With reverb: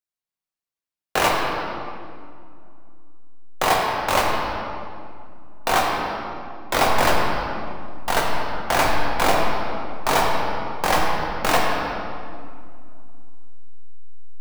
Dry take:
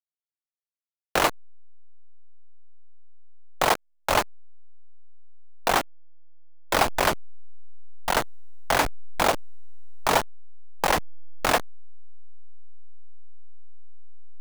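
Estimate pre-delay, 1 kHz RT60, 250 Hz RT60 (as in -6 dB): 8 ms, 2.3 s, 3.3 s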